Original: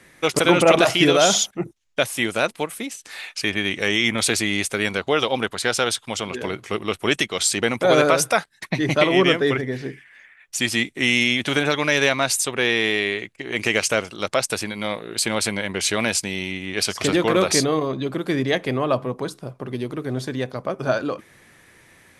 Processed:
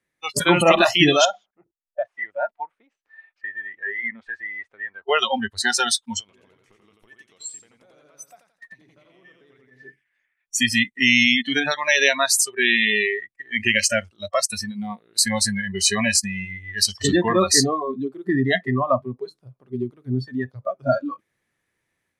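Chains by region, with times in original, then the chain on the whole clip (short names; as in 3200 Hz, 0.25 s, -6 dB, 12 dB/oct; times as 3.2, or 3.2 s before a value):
1.25–5.09 LPF 1500 Hz + bell 140 Hz -13 dB 2.5 oct
6.2–9.83 compressor 8:1, threshold -30 dBFS + feedback echo 87 ms, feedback 35%, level -4 dB
whole clip: spectral noise reduction 29 dB; dynamic EQ 470 Hz, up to -5 dB, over -31 dBFS, Q 1.3; AGC gain up to 4 dB; gain +1 dB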